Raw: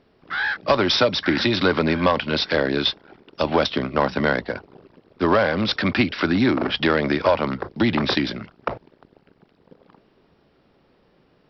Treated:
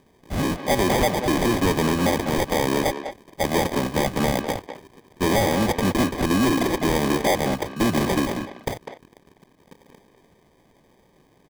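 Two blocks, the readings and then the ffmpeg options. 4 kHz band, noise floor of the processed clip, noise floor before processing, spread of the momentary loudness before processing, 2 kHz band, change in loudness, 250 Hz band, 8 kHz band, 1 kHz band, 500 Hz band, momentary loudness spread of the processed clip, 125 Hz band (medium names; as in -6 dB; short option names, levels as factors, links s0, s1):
-5.5 dB, -59 dBFS, -61 dBFS, 11 LU, -4.5 dB, -1.5 dB, 0.0 dB, no reading, 0.0 dB, -1.5 dB, 11 LU, +2.0 dB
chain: -filter_complex "[0:a]acrusher=samples=32:mix=1:aa=0.000001,asplit=2[s0][s1];[s1]adelay=200,highpass=300,lowpass=3400,asoftclip=type=hard:threshold=0.178,volume=0.398[s2];[s0][s2]amix=inputs=2:normalize=0,asoftclip=type=hard:threshold=0.15,volume=1.12"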